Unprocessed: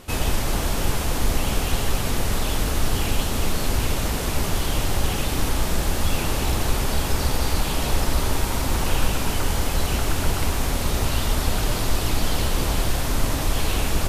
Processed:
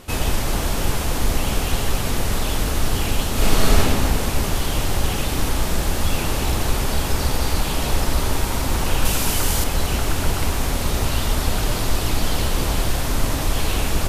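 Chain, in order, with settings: 3.33–3.78 s: reverb throw, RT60 2.4 s, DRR -5.5 dB; 9.05–9.64 s: treble shelf 4.2 kHz +8.5 dB; trim +1.5 dB

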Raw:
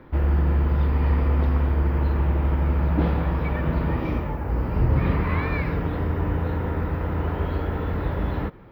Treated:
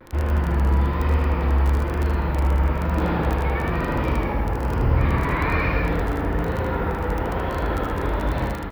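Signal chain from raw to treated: bass shelf 120 Hz +9 dB; in parallel at -1 dB: peak limiter -14.5 dBFS, peak gain reduction 11 dB; on the sum: bass shelf 250 Hz -11.5 dB; gated-style reverb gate 290 ms flat, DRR 0 dB; vibrato 1.1 Hz 68 cents; crackle 14 per s -19 dBFS; on a send: delay 77 ms -5.5 dB; on the sum: trim -2.5 dB

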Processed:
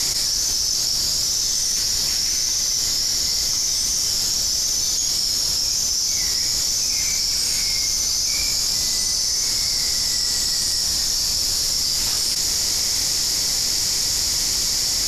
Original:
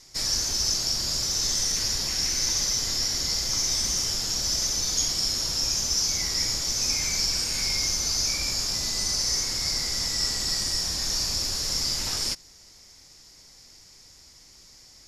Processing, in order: treble shelf 4.6 kHz +10.5 dB; level flattener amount 100%; trim -6 dB

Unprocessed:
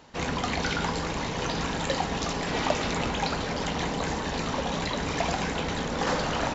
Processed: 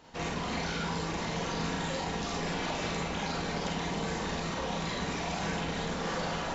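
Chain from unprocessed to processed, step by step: peak limiter -23.5 dBFS, peak gain reduction 11.5 dB; Schroeder reverb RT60 0.35 s, combs from 33 ms, DRR -2 dB; trim -5 dB

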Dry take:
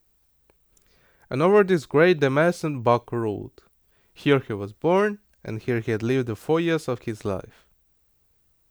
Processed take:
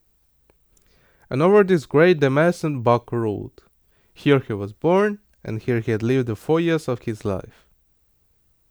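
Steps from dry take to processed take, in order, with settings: bass shelf 390 Hz +3.5 dB; trim +1 dB

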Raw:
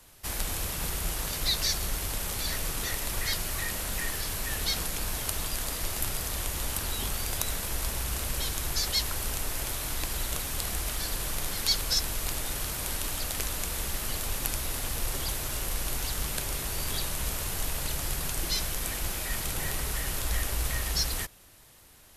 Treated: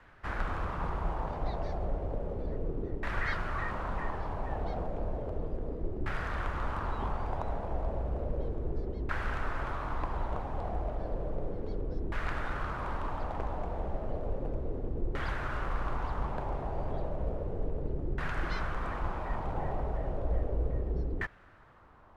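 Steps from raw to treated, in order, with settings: LFO low-pass saw down 0.33 Hz 360–1700 Hz

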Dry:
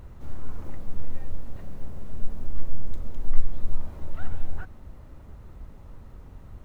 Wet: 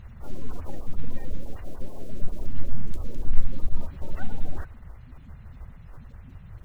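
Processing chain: coarse spectral quantiser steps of 30 dB; attacks held to a fixed rise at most 570 dB/s

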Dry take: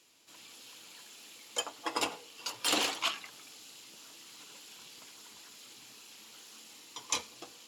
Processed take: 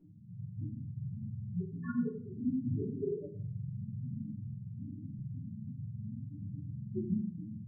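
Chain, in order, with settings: spectrum inverted on a logarithmic axis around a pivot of 1.1 kHz; bass shelf 320 Hz -7.5 dB; compression 6:1, threshold -40 dBFS, peak gain reduction 15.5 dB; loudest bins only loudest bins 1; 4.52–5.18 s: rippled Chebyshev low-pass 2.2 kHz, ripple 3 dB; simulated room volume 51 m³, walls mixed, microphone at 1.7 m; trim +10 dB

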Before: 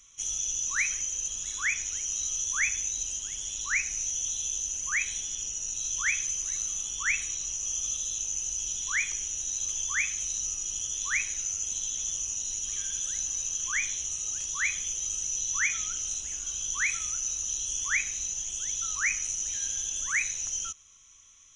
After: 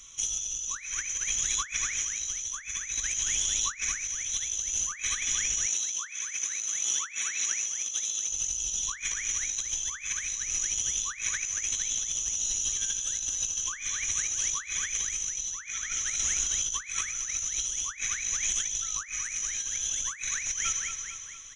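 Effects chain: peaking EQ 3.8 kHz +3.5 dB 0.43 oct; feedback delay 229 ms, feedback 52%, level -9 dB; spring tank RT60 1.9 s, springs 47/51 ms, chirp 20 ms, DRR 14 dB; compressor with a negative ratio -34 dBFS, ratio -0.5; 5.66–8.29 s: high-pass 240 Hz 12 dB/octave; trim +3 dB

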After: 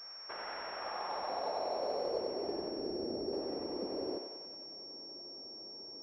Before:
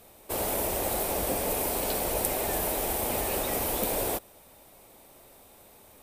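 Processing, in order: 2.71–3.33 s: median filter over 41 samples; compression 2.5:1, threshold -39 dBFS, peak gain reduction 11 dB; band-pass sweep 1.5 kHz -> 340 Hz, 0.62–2.54 s; on a send: thinning echo 93 ms, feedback 82%, high-pass 570 Hz, level -3.5 dB; on the sum: class-D stage that switches slowly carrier 5.5 kHz; trim +7 dB

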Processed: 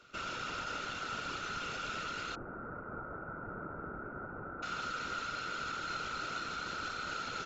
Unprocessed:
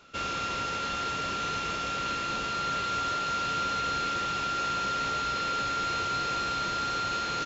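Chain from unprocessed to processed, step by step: 2.35–4.63 s: Gaussian low-pass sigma 8 samples; peak limiter -26.5 dBFS, peak gain reduction 6.5 dB; whisper effect; trim -5 dB

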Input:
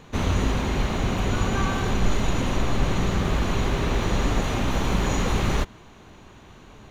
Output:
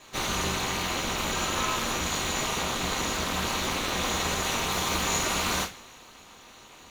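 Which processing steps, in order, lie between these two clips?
tilt EQ +3.5 dB/octave; two-slope reverb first 0.24 s, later 2.1 s, from -28 dB, DRR -7 dB; ring modulator 130 Hz; trim -6 dB

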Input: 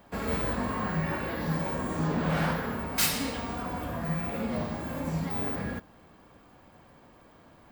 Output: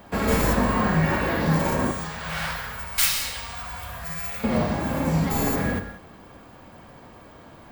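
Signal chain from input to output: tracing distortion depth 0.19 ms; 1.91–4.44 s: amplifier tone stack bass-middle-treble 10-0-10; gated-style reverb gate 210 ms flat, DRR 8 dB; trim +8.5 dB

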